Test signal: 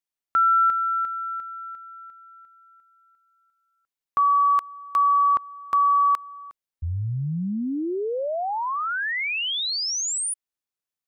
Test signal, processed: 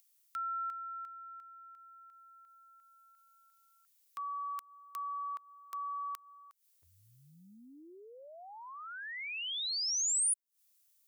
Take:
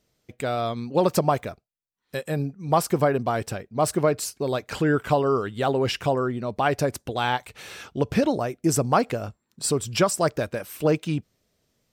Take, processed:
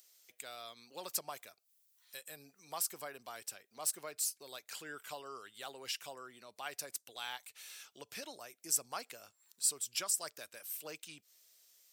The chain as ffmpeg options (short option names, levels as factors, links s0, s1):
-filter_complex "[0:a]aderivative,acrossover=split=300[s0][s1];[s1]acompressor=mode=upward:threshold=0.00501:ratio=2.5:attack=3.1:release=153:knee=2.83:detection=peak[s2];[s0][s2]amix=inputs=2:normalize=0,volume=0.596"